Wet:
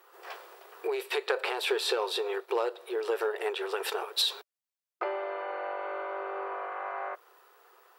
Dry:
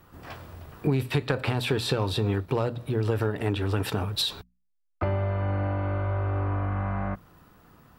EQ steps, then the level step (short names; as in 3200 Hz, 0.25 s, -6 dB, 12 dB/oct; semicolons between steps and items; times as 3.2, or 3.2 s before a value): brick-wall FIR high-pass 350 Hz; notch 610 Hz, Q 13; 0.0 dB